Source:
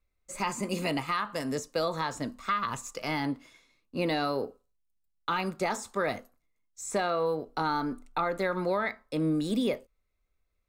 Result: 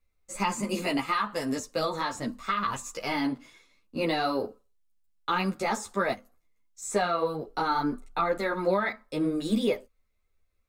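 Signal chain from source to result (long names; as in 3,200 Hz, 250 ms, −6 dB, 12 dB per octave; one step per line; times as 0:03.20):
0:06.13–0:06.82: downward compressor 6 to 1, threshold −46 dBFS, peak gain reduction 10.5 dB
string-ensemble chorus
level +5 dB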